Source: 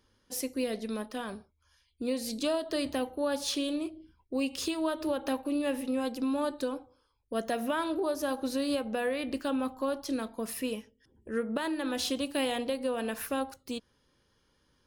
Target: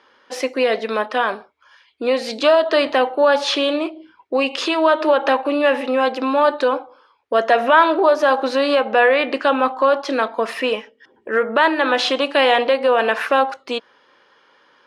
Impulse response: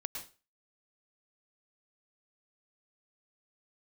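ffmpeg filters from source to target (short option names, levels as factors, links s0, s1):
-af "apsyclip=17.8,highpass=640,lowpass=2400,volume=0.75"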